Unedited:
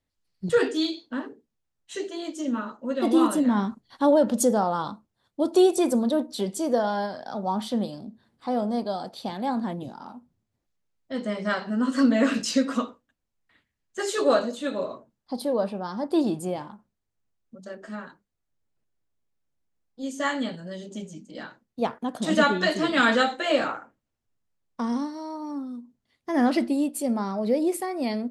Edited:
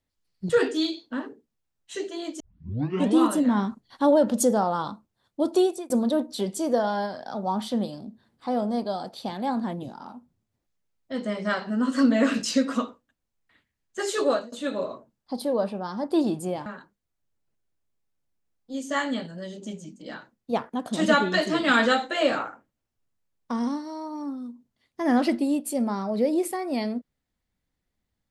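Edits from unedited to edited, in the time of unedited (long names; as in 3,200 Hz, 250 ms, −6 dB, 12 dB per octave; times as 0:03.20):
0:02.40: tape start 0.78 s
0:05.50–0:05.90: fade out
0:14.22–0:14.52: fade out, to −22.5 dB
0:16.66–0:17.95: remove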